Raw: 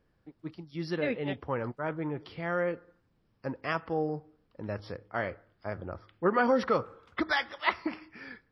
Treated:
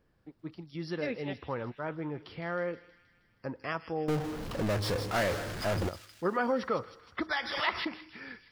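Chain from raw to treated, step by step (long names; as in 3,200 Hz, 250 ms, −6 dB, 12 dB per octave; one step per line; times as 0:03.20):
0:04.08–0:05.89: power curve on the samples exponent 0.35
in parallel at 0 dB: downward compressor, threshold −40 dBFS, peak gain reduction 18 dB
on the sum: delay with a high-pass on its return 158 ms, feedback 61%, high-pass 3,600 Hz, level −6 dB
0:07.37–0:07.96: background raised ahead of every attack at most 57 dB per second
level −5.5 dB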